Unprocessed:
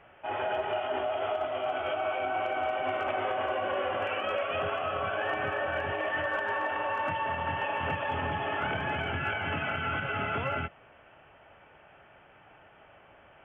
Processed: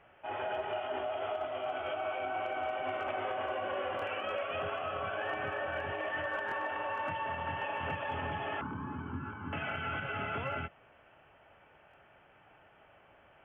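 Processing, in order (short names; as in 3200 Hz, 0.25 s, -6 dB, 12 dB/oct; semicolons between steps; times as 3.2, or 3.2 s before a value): 8.61–9.53 EQ curve 150 Hz 0 dB, 260 Hz +8 dB, 700 Hz -22 dB, 1000 Hz +5 dB, 2000 Hz -19 dB; stuck buffer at 3.97/6.47/11.89, samples 1024, times 1; gain -5 dB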